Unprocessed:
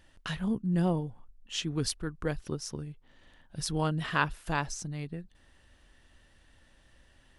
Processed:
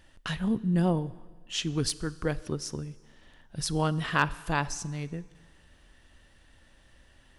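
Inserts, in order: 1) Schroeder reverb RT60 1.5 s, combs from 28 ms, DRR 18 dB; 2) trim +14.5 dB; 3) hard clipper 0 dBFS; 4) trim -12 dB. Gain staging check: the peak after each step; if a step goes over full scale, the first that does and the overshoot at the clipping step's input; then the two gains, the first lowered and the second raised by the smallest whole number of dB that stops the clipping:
-11.5 dBFS, +3.0 dBFS, 0.0 dBFS, -12.0 dBFS; step 2, 3.0 dB; step 2 +11.5 dB, step 4 -9 dB

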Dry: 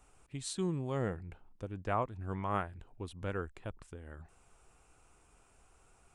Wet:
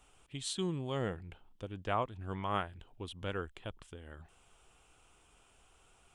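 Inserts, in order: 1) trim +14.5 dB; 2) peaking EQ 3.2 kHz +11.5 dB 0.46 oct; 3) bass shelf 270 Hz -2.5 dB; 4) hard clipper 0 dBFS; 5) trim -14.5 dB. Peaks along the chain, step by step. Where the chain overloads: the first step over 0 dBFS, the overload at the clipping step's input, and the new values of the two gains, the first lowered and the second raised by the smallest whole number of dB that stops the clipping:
-5.5 dBFS, -5.0 dBFS, -4.5 dBFS, -4.5 dBFS, -19.0 dBFS; nothing clips

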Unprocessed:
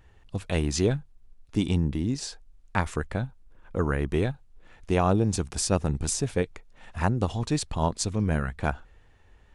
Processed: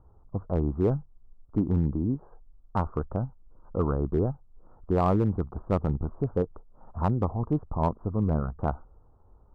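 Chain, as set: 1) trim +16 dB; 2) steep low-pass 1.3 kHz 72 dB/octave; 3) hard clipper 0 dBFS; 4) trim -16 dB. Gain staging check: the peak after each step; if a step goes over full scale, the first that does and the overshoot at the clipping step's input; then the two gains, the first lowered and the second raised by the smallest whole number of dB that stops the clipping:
+7.0 dBFS, +5.0 dBFS, 0.0 dBFS, -16.0 dBFS; step 1, 5.0 dB; step 1 +11 dB, step 4 -11 dB

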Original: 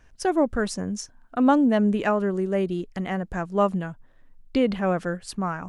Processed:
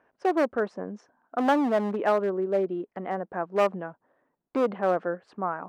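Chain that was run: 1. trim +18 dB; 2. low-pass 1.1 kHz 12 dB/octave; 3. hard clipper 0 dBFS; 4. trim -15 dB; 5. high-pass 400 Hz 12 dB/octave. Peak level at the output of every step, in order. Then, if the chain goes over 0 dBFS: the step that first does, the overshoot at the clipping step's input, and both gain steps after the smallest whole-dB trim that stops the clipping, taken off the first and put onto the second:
+10.5 dBFS, +9.5 dBFS, 0.0 dBFS, -15.0 dBFS, -10.5 dBFS; step 1, 9.5 dB; step 1 +8 dB, step 4 -5 dB

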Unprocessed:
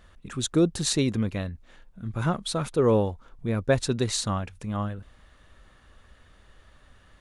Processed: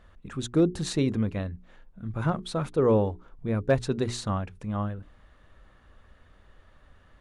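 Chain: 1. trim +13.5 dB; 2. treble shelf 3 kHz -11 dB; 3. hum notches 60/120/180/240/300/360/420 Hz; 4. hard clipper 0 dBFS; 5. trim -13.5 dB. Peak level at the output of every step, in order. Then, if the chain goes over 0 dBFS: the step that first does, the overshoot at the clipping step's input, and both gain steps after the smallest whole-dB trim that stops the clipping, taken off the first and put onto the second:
+4.5 dBFS, +4.0 dBFS, +3.5 dBFS, 0.0 dBFS, -13.5 dBFS; step 1, 3.5 dB; step 1 +9.5 dB, step 5 -9.5 dB

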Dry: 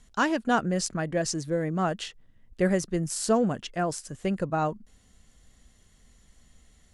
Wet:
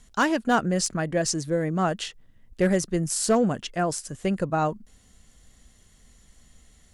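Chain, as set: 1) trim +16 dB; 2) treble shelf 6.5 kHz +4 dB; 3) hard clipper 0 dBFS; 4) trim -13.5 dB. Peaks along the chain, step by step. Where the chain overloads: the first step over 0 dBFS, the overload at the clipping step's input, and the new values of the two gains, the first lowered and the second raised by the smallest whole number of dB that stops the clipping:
+4.5 dBFS, +6.5 dBFS, 0.0 dBFS, -13.5 dBFS; step 1, 6.5 dB; step 1 +9 dB, step 4 -6.5 dB

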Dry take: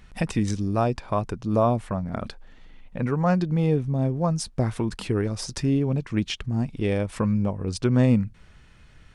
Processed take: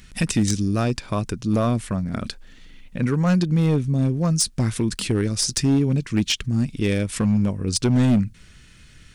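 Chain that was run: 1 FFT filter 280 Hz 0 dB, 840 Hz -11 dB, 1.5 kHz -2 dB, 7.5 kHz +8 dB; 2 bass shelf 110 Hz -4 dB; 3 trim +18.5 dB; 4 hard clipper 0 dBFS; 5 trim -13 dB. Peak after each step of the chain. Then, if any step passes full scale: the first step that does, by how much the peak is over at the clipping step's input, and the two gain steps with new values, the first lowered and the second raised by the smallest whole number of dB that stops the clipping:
-8.5 dBFS, -9.0 dBFS, +9.5 dBFS, 0.0 dBFS, -13.0 dBFS; step 3, 9.5 dB; step 3 +8.5 dB, step 5 -3 dB

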